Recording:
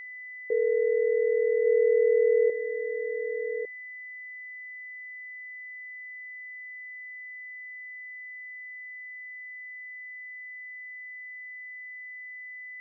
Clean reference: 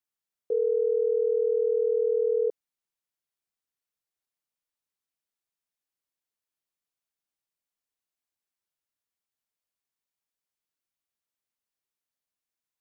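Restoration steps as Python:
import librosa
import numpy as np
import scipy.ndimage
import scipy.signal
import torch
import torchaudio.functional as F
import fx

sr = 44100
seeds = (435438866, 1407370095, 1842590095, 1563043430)

y = fx.notch(x, sr, hz=2000.0, q=30.0)
y = fx.fix_echo_inverse(y, sr, delay_ms=1152, level_db=-7.0)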